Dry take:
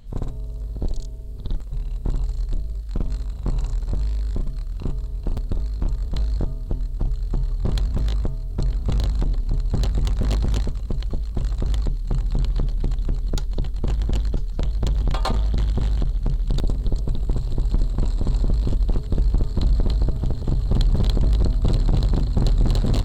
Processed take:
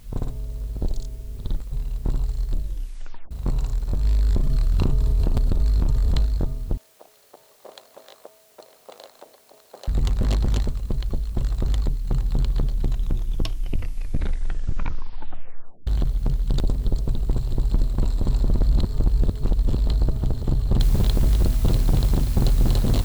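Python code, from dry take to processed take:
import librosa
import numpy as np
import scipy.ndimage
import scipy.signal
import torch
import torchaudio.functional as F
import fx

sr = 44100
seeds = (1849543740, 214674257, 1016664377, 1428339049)

y = fx.env_flatten(x, sr, amount_pct=100, at=(4.04, 6.26))
y = fx.ladder_highpass(y, sr, hz=490.0, resonance_pct=50, at=(6.77, 9.88))
y = fx.noise_floor_step(y, sr, seeds[0], at_s=20.8, before_db=-58, after_db=-42, tilt_db=0.0)
y = fx.edit(y, sr, fx.tape_stop(start_s=2.6, length_s=0.71),
    fx.tape_stop(start_s=12.77, length_s=3.1),
    fx.reverse_span(start_s=18.55, length_s=1.32), tone=tone)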